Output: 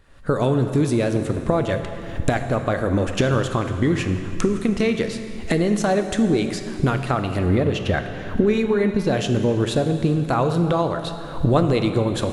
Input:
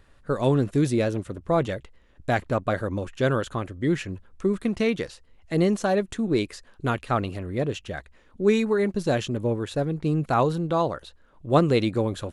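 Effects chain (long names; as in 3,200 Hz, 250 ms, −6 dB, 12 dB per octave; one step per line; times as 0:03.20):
camcorder AGC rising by 46 dB per second
0:07.46–0:09.15: parametric band 8,100 Hz −9 dB 0.93 octaves
convolution reverb RT60 2.8 s, pre-delay 18 ms, DRR 7 dB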